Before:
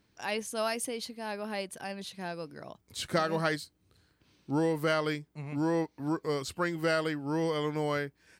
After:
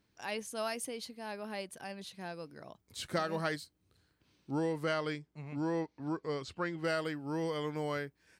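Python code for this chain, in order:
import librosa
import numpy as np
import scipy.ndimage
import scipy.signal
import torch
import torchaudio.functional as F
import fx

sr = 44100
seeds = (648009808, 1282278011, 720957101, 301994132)

y = fx.lowpass(x, sr, hz=fx.line((4.51, 10000.0), (6.83, 4500.0)), slope=12, at=(4.51, 6.83), fade=0.02)
y = y * 10.0 ** (-5.0 / 20.0)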